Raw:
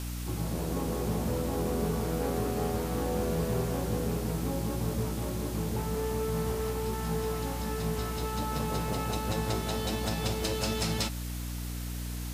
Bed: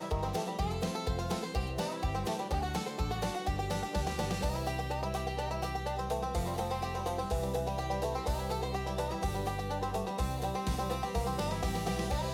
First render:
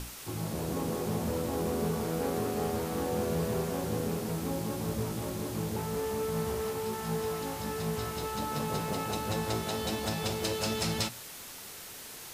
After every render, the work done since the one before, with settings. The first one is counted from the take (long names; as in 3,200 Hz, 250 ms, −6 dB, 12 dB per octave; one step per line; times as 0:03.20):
mains-hum notches 60/120/180/240/300 Hz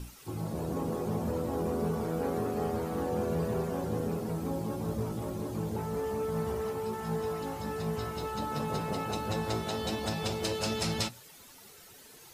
broadband denoise 11 dB, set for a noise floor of −45 dBFS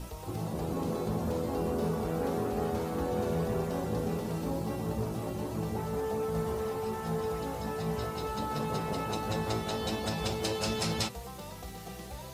mix in bed −10.5 dB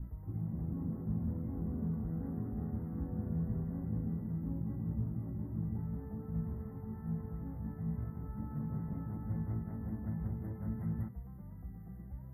brick-wall band-stop 2,100–11,000 Hz
drawn EQ curve 130 Hz 0 dB, 270 Hz −5 dB, 430 Hz −21 dB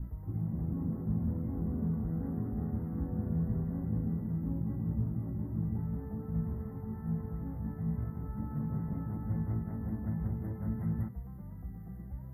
level +3.5 dB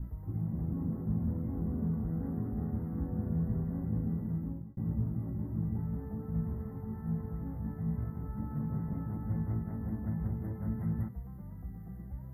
0:04.36–0:04.77: fade out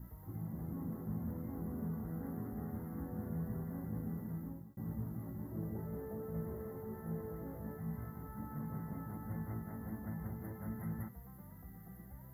spectral tilt +3 dB per octave
0:05.52–0:07.77: gain on a spectral selection 320–680 Hz +8 dB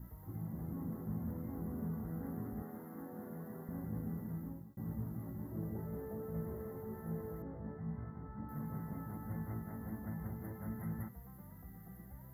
0:02.62–0:03.69: high-pass filter 260 Hz
0:07.42–0:08.49: high-frequency loss of the air 390 metres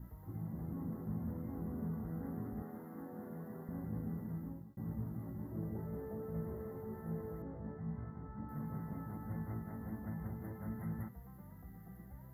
high-shelf EQ 4,500 Hz −6.5 dB